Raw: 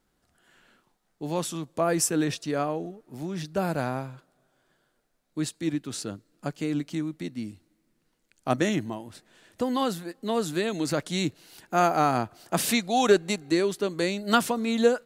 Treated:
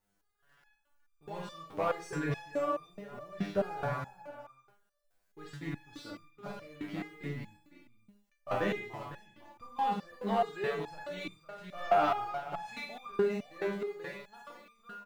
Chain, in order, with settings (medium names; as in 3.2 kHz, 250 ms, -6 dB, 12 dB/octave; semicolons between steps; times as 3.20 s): fade out at the end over 3.51 s; low-pass 1.9 kHz 12 dB/octave; peaking EQ 260 Hz -10 dB 1.3 oct; in parallel at +2.5 dB: compression, threshold -44 dBFS, peak gain reduction 22 dB; on the sum: word length cut 12-bit, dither triangular; Schroeder reverb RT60 0.42 s, combs from 33 ms, DRR 1 dB; waveshaping leveller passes 2; on a send: delay 505 ms -11.5 dB; on the sum: resonator arpeggio 4.7 Hz 100–1200 Hz